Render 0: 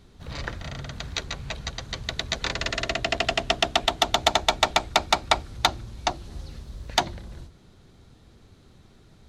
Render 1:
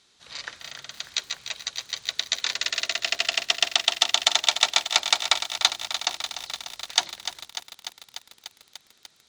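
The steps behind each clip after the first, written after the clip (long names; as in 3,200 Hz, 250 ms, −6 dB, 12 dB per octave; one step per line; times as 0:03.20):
meter weighting curve ITU-R 468
feedback echo at a low word length 296 ms, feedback 80%, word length 6 bits, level −10 dB
level −6.5 dB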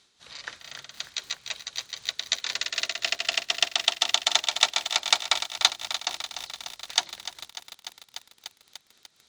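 amplitude tremolo 3.9 Hz, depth 49%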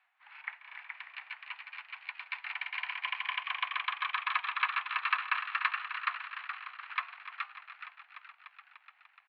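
flanger 0.51 Hz, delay 3.2 ms, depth 5.1 ms, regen −89%
echo with shifted repeats 422 ms, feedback 36%, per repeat +100 Hz, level −4 dB
single-sideband voice off tune +350 Hz 420–2,200 Hz
level +3.5 dB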